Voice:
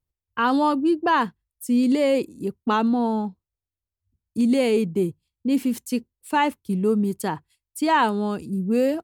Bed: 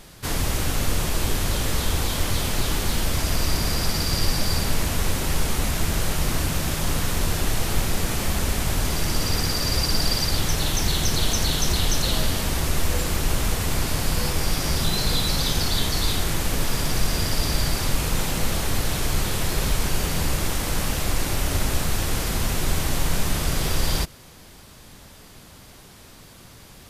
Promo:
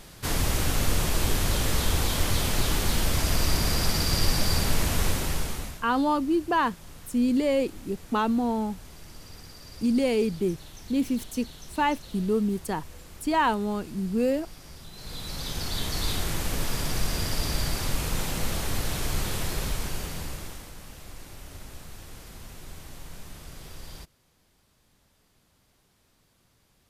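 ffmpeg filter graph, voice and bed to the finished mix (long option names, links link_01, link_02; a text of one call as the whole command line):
ffmpeg -i stem1.wav -i stem2.wav -filter_complex "[0:a]adelay=5450,volume=-4dB[link_01];[1:a]volume=16dB,afade=type=out:start_time=5.04:duration=0.79:silence=0.0891251,afade=type=in:start_time=14.93:duration=1.19:silence=0.133352,afade=type=out:start_time=19.35:duration=1.39:silence=0.177828[link_02];[link_01][link_02]amix=inputs=2:normalize=0" out.wav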